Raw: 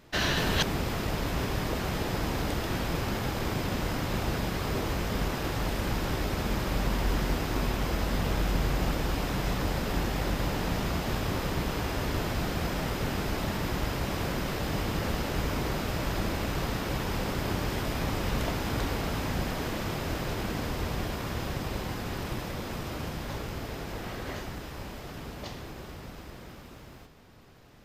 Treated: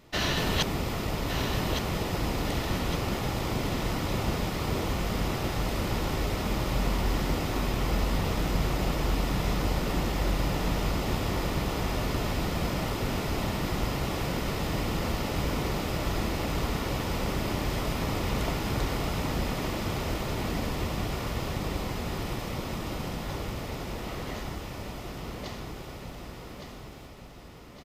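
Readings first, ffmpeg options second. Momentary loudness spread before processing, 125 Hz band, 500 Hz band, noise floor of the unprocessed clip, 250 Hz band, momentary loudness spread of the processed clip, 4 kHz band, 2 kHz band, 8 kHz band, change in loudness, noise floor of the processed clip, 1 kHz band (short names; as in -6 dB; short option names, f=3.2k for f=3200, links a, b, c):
8 LU, +1.0 dB, +1.0 dB, -46 dBFS, +1.0 dB, 9 LU, +1.0 dB, -0.5 dB, +1.0 dB, +1.0 dB, -43 dBFS, +1.0 dB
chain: -filter_complex "[0:a]bandreject=f=1.6k:w=7.9,asplit=2[a][b];[b]aecho=0:1:1163|2326|3489|4652|5815|6978:0.447|0.219|0.107|0.0526|0.0258|0.0126[c];[a][c]amix=inputs=2:normalize=0"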